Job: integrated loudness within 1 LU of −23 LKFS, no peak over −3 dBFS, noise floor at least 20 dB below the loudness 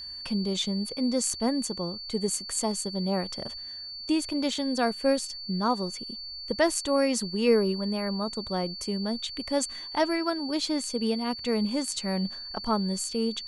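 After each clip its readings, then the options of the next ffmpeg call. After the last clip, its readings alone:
interfering tone 4,500 Hz; level of the tone −37 dBFS; integrated loudness −28.5 LKFS; sample peak −11.0 dBFS; target loudness −23.0 LKFS
→ -af "bandreject=frequency=4500:width=30"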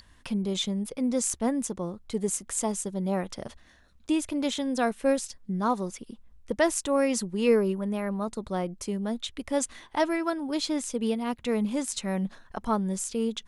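interfering tone none found; integrated loudness −29.0 LKFS; sample peak −11.5 dBFS; target loudness −23.0 LKFS
→ -af "volume=6dB"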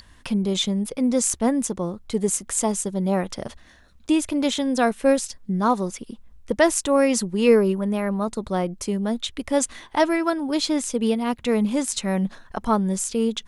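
integrated loudness −23.0 LKFS; sample peak −5.5 dBFS; background noise floor −52 dBFS

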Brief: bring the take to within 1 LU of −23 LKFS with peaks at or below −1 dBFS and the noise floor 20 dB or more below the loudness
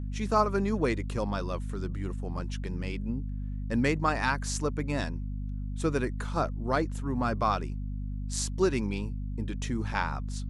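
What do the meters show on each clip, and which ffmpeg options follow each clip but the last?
mains hum 50 Hz; hum harmonics up to 250 Hz; level of the hum −31 dBFS; integrated loudness −31.0 LKFS; sample peak −12.0 dBFS; target loudness −23.0 LKFS
→ -af "bandreject=frequency=50:width_type=h:width=6,bandreject=frequency=100:width_type=h:width=6,bandreject=frequency=150:width_type=h:width=6,bandreject=frequency=200:width_type=h:width=6,bandreject=frequency=250:width_type=h:width=6"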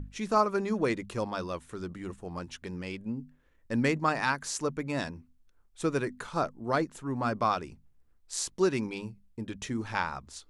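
mains hum none found; integrated loudness −32.0 LKFS; sample peak −12.5 dBFS; target loudness −23.0 LKFS
→ -af "volume=9dB"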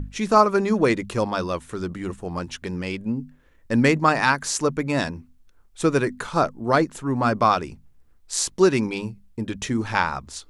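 integrated loudness −23.0 LKFS; sample peak −3.5 dBFS; background noise floor −55 dBFS

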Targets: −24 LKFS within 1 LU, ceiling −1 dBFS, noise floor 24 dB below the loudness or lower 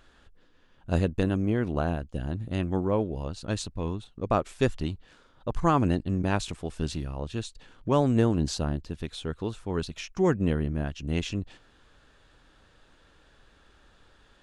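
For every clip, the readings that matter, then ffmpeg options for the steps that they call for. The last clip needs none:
integrated loudness −29.0 LKFS; sample peak −8.5 dBFS; target loudness −24.0 LKFS
→ -af "volume=5dB"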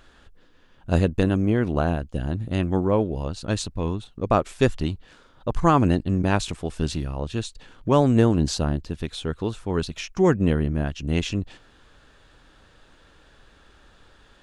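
integrated loudness −24.0 LKFS; sample peak −3.5 dBFS; background noise floor −55 dBFS

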